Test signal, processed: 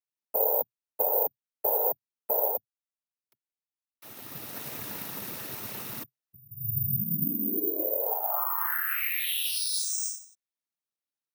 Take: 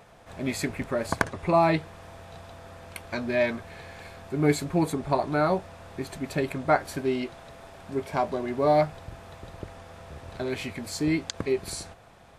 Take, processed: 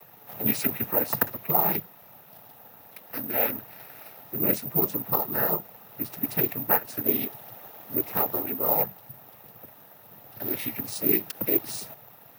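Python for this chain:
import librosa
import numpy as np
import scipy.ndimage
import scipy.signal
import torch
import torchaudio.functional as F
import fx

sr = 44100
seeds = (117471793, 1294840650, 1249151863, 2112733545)

y = fx.noise_vocoder(x, sr, seeds[0], bands=12)
y = (np.kron(scipy.signal.resample_poly(y, 1, 3), np.eye(3)[0]) * 3)[:len(y)]
y = fx.rider(y, sr, range_db=4, speed_s=0.5)
y = F.gain(torch.from_numpy(y), -3.5).numpy()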